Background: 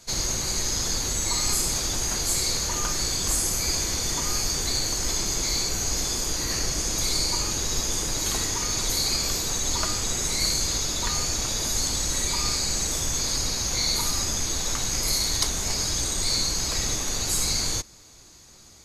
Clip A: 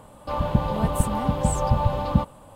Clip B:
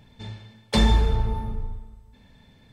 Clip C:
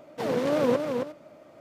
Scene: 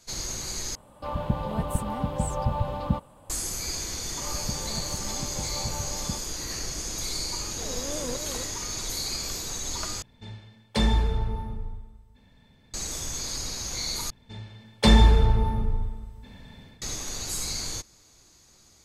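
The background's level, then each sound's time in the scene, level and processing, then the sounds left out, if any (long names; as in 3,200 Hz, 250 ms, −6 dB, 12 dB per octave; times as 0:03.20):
background −6.5 dB
0:00.75: overwrite with A −5.5 dB
0:03.94: mix in A −13.5 dB
0:07.40: mix in C −11.5 dB
0:10.02: overwrite with B −4 dB
0:14.10: overwrite with B −4 dB + automatic gain control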